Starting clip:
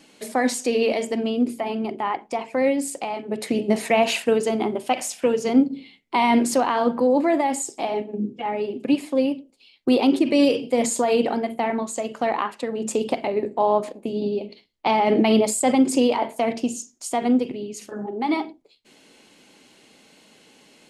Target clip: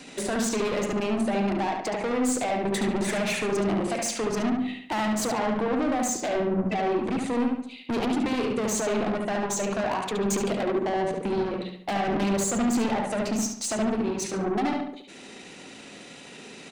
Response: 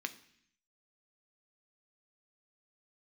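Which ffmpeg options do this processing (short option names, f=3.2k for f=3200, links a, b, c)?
-filter_complex "[0:a]bandreject=f=50:t=h:w=6,bandreject=f=100:t=h:w=6,bandreject=f=150:t=h:w=6,bandreject=f=200:t=h:w=6,bandreject=f=250:t=h:w=6,acrossover=split=220[a][b];[b]acompressor=threshold=-27dB:ratio=5[c];[a][c]amix=inputs=2:normalize=0,asetrate=32097,aresample=44100,atempo=1.37395,aeval=exprs='(tanh(44.7*val(0)+0.05)-tanh(0.05))/44.7':c=same,asetrate=55125,aresample=44100,asplit=2[d][e];[e]adelay=71,lowpass=f=3.8k:p=1,volume=-3dB,asplit=2[f][g];[g]adelay=71,lowpass=f=3.8k:p=1,volume=0.45,asplit=2[h][i];[i]adelay=71,lowpass=f=3.8k:p=1,volume=0.45,asplit=2[j][k];[k]adelay=71,lowpass=f=3.8k:p=1,volume=0.45,asplit=2[l][m];[m]adelay=71,lowpass=f=3.8k:p=1,volume=0.45,asplit=2[n][o];[o]adelay=71,lowpass=f=3.8k:p=1,volume=0.45[p];[f][h][j][l][n][p]amix=inputs=6:normalize=0[q];[d][q]amix=inputs=2:normalize=0,volume=8dB"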